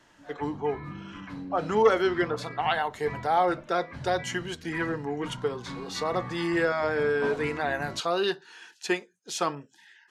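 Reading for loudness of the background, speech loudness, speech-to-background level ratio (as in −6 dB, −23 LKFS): −40.5 LKFS, −28.5 LKFS, 12.0 dB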